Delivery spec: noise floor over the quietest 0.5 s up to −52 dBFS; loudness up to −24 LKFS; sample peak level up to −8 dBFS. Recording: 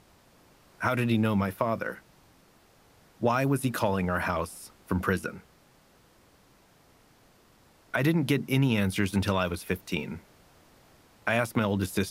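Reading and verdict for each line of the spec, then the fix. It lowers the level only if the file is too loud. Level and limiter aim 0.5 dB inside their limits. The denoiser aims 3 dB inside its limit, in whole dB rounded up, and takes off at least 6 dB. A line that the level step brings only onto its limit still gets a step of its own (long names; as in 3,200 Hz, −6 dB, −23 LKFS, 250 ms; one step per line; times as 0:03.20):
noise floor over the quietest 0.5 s −60 dBFS: in spec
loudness −28.5 LKFS: in spec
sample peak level −11.5 dBFS: in spec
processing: no processing needed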